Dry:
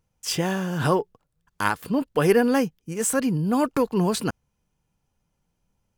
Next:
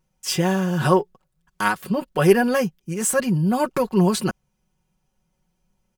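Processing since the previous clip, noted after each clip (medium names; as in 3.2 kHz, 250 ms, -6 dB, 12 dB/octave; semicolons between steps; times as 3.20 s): comb 5.4 ms, depth 87%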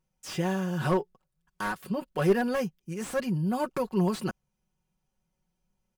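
slew-rate limiter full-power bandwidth 160 Hz; trim -8 dB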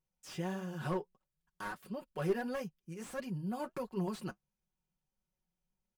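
flange 1.5 Hz, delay 1.5 ms, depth 6.4 ms, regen -55%; trim -6 dB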